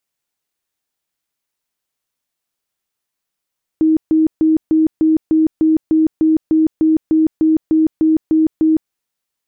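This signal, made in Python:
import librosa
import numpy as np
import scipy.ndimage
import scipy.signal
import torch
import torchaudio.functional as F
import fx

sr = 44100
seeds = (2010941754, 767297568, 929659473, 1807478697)

y = fx.tone_burst(sr, hz=316.0, cycles=50, every_s=0.3, bursts=17, level_db=-9.0)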